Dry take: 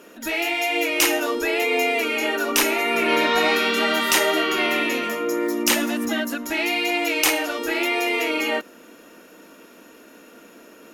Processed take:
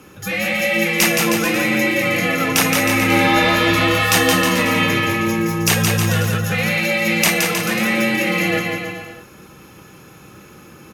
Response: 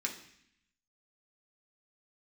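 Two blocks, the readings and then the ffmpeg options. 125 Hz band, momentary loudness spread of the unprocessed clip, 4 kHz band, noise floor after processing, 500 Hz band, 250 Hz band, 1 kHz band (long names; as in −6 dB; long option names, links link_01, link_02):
+27.5 dB, 6 LU, +3.0 dB, −43 dBFS, +2.0 dB, +6.5 dB, +3.5 dB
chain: -af "afreqshift=-130,aecho=1:1:170|314.5|437.3|541.7|630.5:0.631|0.398|0.251|0.158|0.1,volume=2.5dB"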